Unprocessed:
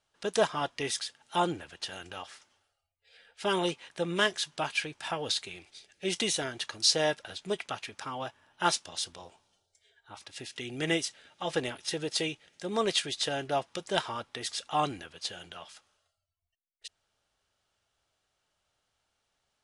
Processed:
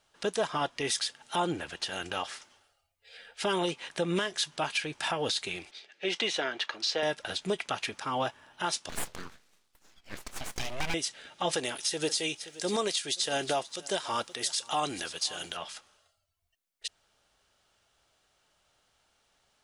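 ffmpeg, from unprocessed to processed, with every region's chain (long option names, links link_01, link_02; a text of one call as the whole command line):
ffmpeg -i in.wav -filter_complex "[0:a]asettb=1/sr,asplit=3[link_01][link_02][link_03];[link_01]atrim=end=5.714[link_04];[link_02]atrim=start=5.71:end=7.03,asetpts=PTS-STARTPTS,afade=type=in:duration=0.004:curve=qsin,afade=type=out:start_time=1.316:duration=0.004:curve=qsin,highpass=240,lowpass=3400,lowshelf=frequency=410:gain=-8[link_05];[link_03]atrim=start=7.026[link_06];[link_04][link_05]acrossfade=duration=0.004:curve1=hsin:curve2=qsin[link_07];[link_07][link_06]acrossfade=duration=0.004:curve1=qsin:curve2=hsin,asettb=1/sr,asplit=3[link_08][link_09][link_10];[link_08]atrim=end=8.894[link_11];[link_09]atrim=start=8.89:end=10.94,asetpts=PTS-STARTPTS,afade=type=in:duration=0.004:curve=qsin,afade=type=out:start_time=2.046:duration=0.004:curve=qsin,highpass=220,lowpass=6500,aeval=exprs='abs(val(0))':channel_layout=same[link_12];[link_10]atrim=start=10.936[link_13];[link_11][link_12]acrossfade=duration=0.004:curve1=hsin:curve2=qsin[link_14];[link_14][link_13]acrossfade=duration=0.004:curve1=qsin:curve2=hsin,asettb=1/sr,asplit=3[link_15][link_16][link_17];[link_15]atrim=end=11.514[link_18];[link_16]atrim=start=11.51:end=15.57,asetpts=PTS-STARTPTS,afade=type=in:duration=0.004:curve=qsin,afade=type=out:start_time=4.056:duration=0.004:curve=qsin,bass=frequency=250:gain=-5,treble=frequency=4000:gain=10,aecho=1:1:525:0.075,atrim=end_sample=179046[link_19];[link_17]atrim=start=15.566[link_20];[link_18][link_19]acrossfade=duration=0.004:curve1=hsin:curve2=qsin[link_21];[link_21][link_20]acrossfade=duration=0.004:curve1=qsin:curve2=hsin,equalizer=frequency=94:width_type=o:width=0.75:gain=-4.5,acompressor=threshold=-33dB:ratio=1.5,alimiter=level_in=3dB:limit=-24dB:level=0:latency=1:release=178,volume=-3dB,volume=8dB" out.wav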